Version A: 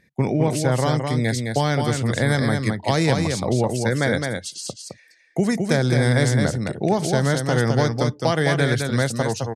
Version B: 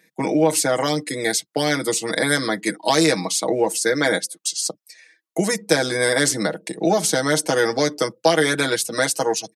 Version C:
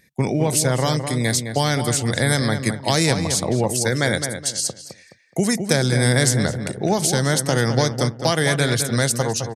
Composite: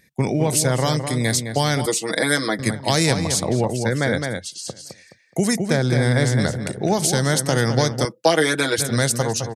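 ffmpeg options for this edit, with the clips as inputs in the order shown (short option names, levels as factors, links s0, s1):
-filter_complex "[1:a]asplit=2[s0][s1];[0:a]asplit=2[s2][s3];[2:a]asplit=5[s4][s5][s6][s7][s8];[s4]atrim=end=1.862[s9];[s0]atrim=start=1.858:end=2.592[s10];[s5]atrim=start=2.588:end=3.652[s11];[s2]atrim=start=3.648:end=4.682[s12];[s6]atrim=start=4.678:end=5.572[s13];[s3]atrim=start=5.568:end=6.402[s14];[s7]atrim=start=6.398:end=8.052[s15];[s1]atrim=start=8.048:end=8.782[s16];[s8]atrim=start=8.778[s17];[s9][s10]acrossfade=d=0.004:c1=hsin:c2=hsin[s18];[s18][s11]acrossfade=d=0.004:c1=hsin:c2=hsin[s19];[s19][s12]acrossfade=d=0.004:c1=hsin:c2=hsin[s20];[s20][s13]acrossfade=d=0.004:c1=hsin:c2=hsin[s21];[s21][s14]acrossfade=d=0.004:c1=hsin:c2=hsin[s22];[s22][s15]acrossfade=d=0.004:c1=hsin:c2=hsin[s23];[s23][s16]acrossfade=d=0.004:c1=hsin:c2=hsin[s24];[s24][s17]acrossfade=d=0.004:c1=hsin:c2=hsin"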